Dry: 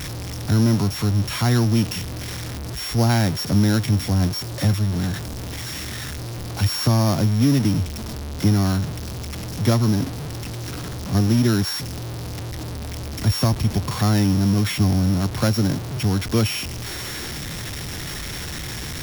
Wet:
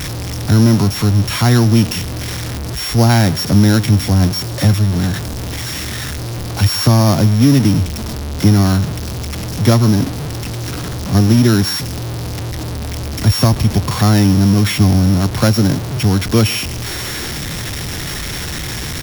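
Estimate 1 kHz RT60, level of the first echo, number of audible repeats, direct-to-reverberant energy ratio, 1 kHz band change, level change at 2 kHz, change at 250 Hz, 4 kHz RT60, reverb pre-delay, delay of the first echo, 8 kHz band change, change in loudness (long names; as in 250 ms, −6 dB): no reverb audible, −21.5 dB, 1, no reverb audible, +7.0 dB, +7.0 dB, +7.0 dB, no reverb audible, no reverb audible, 136 ms, +7.0 dB, +7.0 dB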